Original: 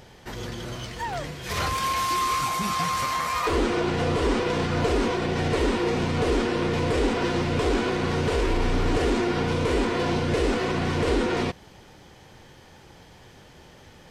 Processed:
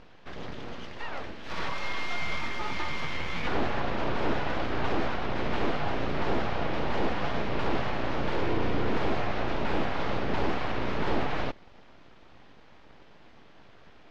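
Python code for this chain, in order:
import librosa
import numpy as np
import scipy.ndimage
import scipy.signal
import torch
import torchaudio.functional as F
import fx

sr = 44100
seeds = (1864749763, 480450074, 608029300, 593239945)

y = np.abs(x)
y = fx.air_absorb(y, sr, metres=220.0)
y = y * 10.0 ** (-1.0 / 20.0)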